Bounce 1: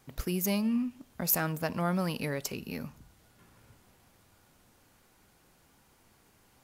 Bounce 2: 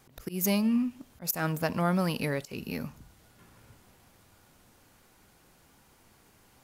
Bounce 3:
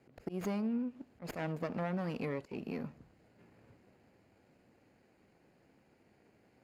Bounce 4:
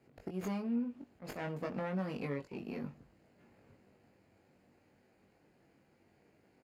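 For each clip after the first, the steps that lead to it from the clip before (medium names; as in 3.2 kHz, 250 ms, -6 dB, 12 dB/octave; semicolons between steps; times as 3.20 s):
slow attack 138 ms; trim +3 dB
comb filter that takes the minimum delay 0.42 ms; band-pass filter 470 Hz, Q 0.51; compression 3:1, threshold -34 dBFS, peak gain reduction 7 dB
doubling 21 ms -4 dB; trim -2.5 dB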